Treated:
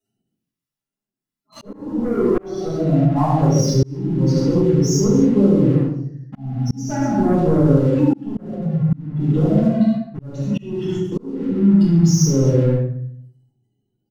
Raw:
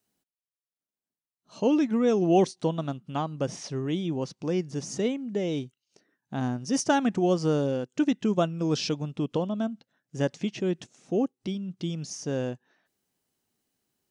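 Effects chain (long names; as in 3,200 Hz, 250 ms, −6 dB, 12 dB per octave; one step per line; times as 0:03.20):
0:01.73–0:03.58: spectral envelope exaggerated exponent 1.5
0:08.40–0:08.93: inverse Chebyshev low-pass filter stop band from 590 Hz, stop band 60 dB
gate on every frequency bin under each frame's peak −10 dB strong
on a send: multi-tap delay 70/89/99/135/230 ms −5.5/−13/−11/−11.5/−10 dB
on the sum: leveller curve on the samples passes 2
brickwall limiter −20.5 dBFS, peak gain reduction 10.5 dB
parametric band 130 Hz +7.5 dB 0.39 octaves
rectangular room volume 94 cubic metres, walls mixed, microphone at 4 metres
volume swells 630 ms
level −4 dB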